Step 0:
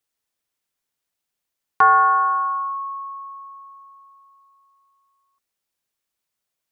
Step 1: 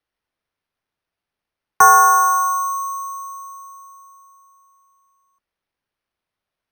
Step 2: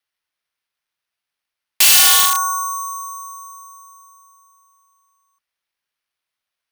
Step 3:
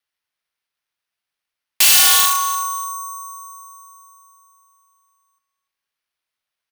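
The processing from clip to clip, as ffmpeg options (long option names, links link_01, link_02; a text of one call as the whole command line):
ffmpeg -i in.wav -filter_complex "[0:a]bass=frequency=250:gain=-3,treble=frequency=4000:gain=-15,acrossover=split=130|470|680[link_01][link_02][link_03][link_04];[link_01]acontrast=69[link_05];[link_05][link_02][link_03][link_04]amix=inputs=4:normalize=0,acrusher=samples=6:mix=1:aa=0.000001,volume=4dB" out.wav
ffmpeg -i in.wav -af "afreqshift=13,aeval=exprs='(mod(3.16*val(0)+1,2)-1)/3.16':channel_layout=same,tiltshelf=frequency=970:gain=-8.5,volume=-3.5dB" out.wav
ffmpeg -i in.wav -af "aecho=1:1:294|588:0.168|0.0285,volume=-1dB" out.wav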